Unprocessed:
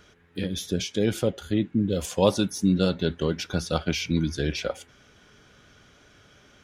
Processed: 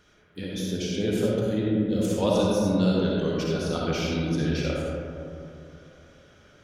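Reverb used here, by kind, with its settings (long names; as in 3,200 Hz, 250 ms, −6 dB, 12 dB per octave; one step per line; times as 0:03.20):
comb and all-pass reverb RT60 2.8 s, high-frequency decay 0.3×, pre-delay 20 ms, DRR −4.5 dB
level −6 dB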